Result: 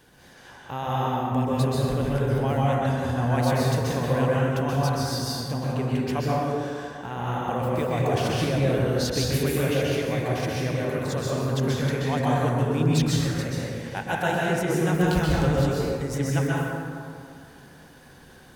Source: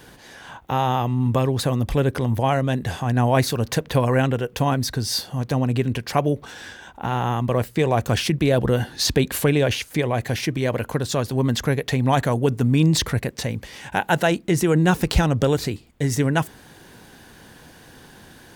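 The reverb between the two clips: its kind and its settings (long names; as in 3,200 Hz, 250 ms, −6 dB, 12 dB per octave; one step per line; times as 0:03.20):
dense smooth reverb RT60 2.3 s, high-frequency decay 0.45×, pre-delay 115 ms, DRR −6 dB
level −10.5 dB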